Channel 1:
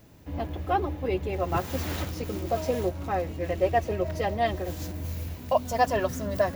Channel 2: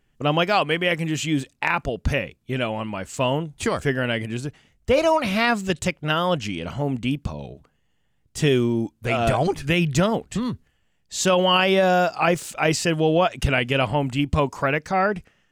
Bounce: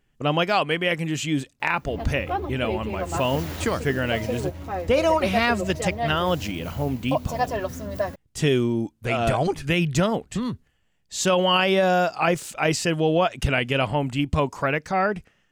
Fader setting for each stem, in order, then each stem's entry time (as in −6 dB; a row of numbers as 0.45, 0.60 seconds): −1.5, −1.5 decibels; 1.60, 0.00 seconds